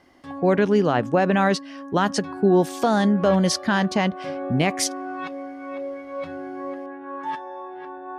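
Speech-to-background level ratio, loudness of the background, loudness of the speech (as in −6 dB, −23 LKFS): 12.5 dB, −34.0 LKFS, −21.5 LKFS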